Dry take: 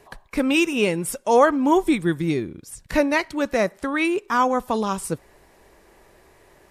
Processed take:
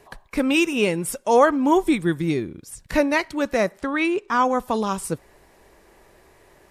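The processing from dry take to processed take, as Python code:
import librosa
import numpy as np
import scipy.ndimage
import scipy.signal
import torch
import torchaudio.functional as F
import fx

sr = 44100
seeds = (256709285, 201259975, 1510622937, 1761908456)

y = fx.bessel_lowpass(x, sr, hz=6400.0, order=2, at=(3.81, 4.45))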